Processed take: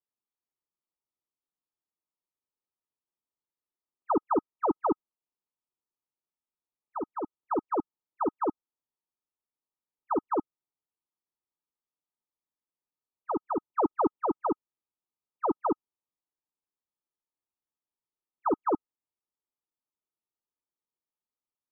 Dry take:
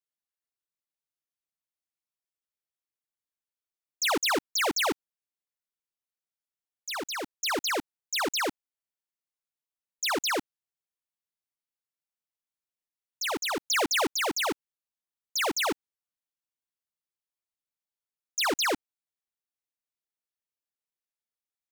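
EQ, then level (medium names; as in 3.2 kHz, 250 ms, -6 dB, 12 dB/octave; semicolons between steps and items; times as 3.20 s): rippled Chebyshev low-pass 1.3 kHz, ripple 6 dB; +4.5 dB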